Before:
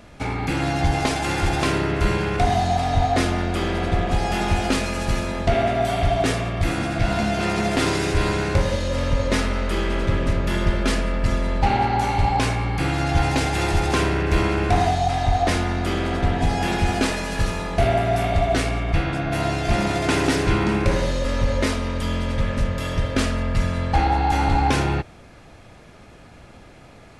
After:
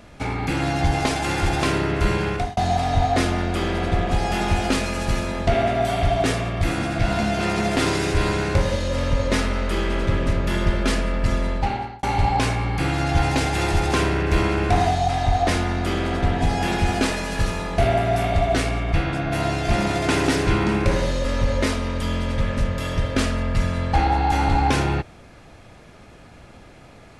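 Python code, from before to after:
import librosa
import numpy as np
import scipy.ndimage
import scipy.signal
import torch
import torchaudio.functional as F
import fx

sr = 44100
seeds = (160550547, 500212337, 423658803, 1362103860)

y = fx.edit(x, sr, fx.fade_out_span(start_s=2.3, length_s=0.27),
    fx.fade_out_span(start_s=11.45, length_s=0.58), tone=tone)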